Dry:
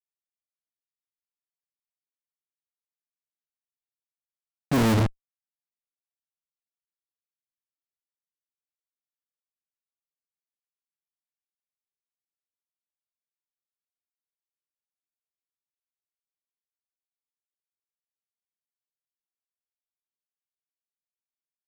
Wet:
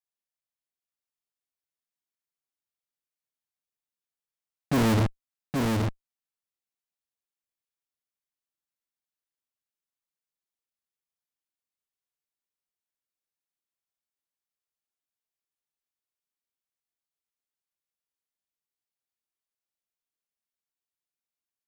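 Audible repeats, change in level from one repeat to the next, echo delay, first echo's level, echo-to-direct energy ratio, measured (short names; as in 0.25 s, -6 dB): 1, no steady repeat, 0.824 s, -3.5 dB, -3.5 dB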